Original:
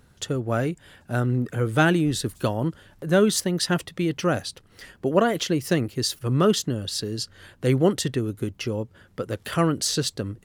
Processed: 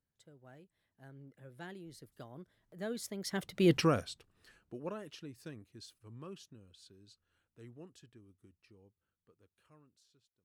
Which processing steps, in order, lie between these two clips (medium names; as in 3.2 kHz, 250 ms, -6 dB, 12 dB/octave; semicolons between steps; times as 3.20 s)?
fade out at the end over 1.68 s; Doppler pass-by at 3.73 s, 34 m/s, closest 2.4 m; trim +1.5 dB